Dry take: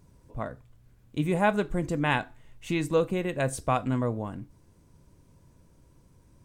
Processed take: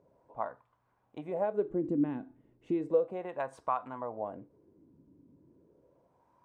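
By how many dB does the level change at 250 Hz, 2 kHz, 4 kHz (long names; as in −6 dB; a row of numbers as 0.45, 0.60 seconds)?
−5.0 dB, −18.0 dB, below −20 dB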